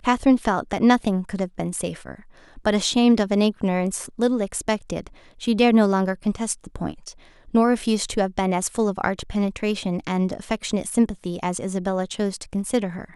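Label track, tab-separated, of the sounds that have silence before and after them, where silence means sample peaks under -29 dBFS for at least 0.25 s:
2.650000	5.070000	sound
5.420000	7.090000	sound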